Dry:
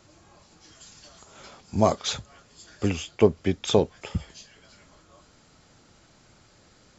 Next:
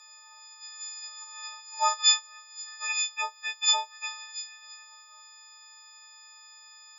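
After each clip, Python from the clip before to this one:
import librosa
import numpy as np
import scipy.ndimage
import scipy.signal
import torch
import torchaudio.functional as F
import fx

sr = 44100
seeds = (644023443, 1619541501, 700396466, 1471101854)

y = fx.freq_snap(x, sr, grid_st=6)
y = scipy.signal.sosfilt(scipy.signal.ellip(4, 1.0, 80, 890.0, 'highpass', fs=sr, output='sos'), y)
y = F.gain(torch.from_numpy(y), -1.5).numpy()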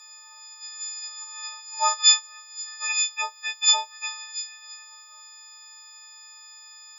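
y = fx.high_shelf(x, sr, hz=4300.0, db=6.0)
y = F.gain(torch.from_numpy(y), 1.5).numpy()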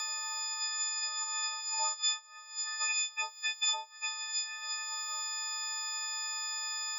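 y = fx.band_squash(x, sr, depth_pct=100)
y = F.gain(torch.from_numpy(y), -5.0).numpy()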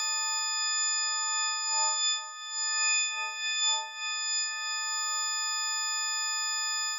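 y = fx.spec_blur(x, sr, span_ms=147.0)
y = fx.echo_feedback(y, sr, ms=388, feedback_pct=37, wet_db=-11.5)
y = F.gain(torch.from_numpy(y), 7.0).numpy()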